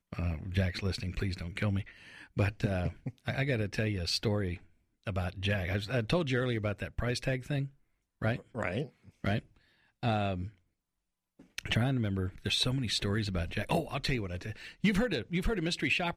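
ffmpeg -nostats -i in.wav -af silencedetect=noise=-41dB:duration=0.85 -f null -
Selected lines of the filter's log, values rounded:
silence_start: 10.49
silence_end: 11.58 | silence_duration: 1.10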